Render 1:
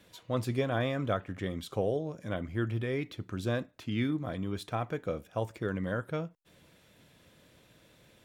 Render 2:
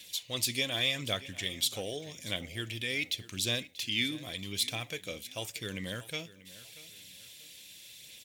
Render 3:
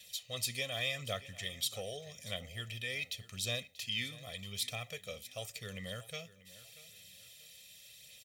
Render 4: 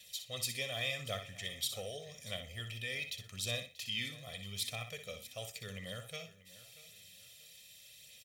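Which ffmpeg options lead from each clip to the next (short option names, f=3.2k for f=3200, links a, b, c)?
-af "aphaser=in_gain=1:out_gain=1:delay=3.9:decay=0.28:speed=0.86:type=sinusoidal,aexciter=amount=14.6:drive=3.9:freq=2.1k,aecho=1:1:637|1274|1911:0.126|0.0428|0.0146,volume=-8.5dB"
-af "aecho=1:1:1.6:0.94,volume=-7.5dB"
-af "aecho=1:1:61|122|183:0.355|0.0674|0.0128,volume=-1.5dB"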